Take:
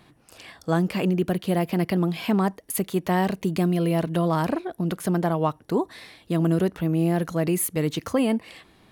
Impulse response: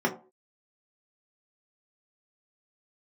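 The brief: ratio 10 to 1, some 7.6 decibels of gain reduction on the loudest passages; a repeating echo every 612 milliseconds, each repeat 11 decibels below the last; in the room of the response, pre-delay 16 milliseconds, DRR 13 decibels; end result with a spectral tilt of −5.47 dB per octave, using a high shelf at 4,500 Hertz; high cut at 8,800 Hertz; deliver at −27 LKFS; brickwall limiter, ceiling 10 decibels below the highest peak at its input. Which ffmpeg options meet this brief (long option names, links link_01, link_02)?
-filter_complex "[0:a]lowpass=8800,highshelf=frequency=4500:gain=6.5,acompressor=threshold=-25dB:ratio=10,alimiter=level_in=1.5dB:limit=-24dB:level=0:latency=1,volume=-1.5dB,aecho=1:1:612|1224|1836:0.282|0.0789|0.0221,asplit=2[link_01][link_02];[1:a]atrim=start_sample=2205,adelay=16[link_03];[link_02][link_03]afir=irnorm=-1:irlink=0,volume=-25dB[link_04];[link_01][link_04]amix=inputs=2:normalize=0,volume=7dB"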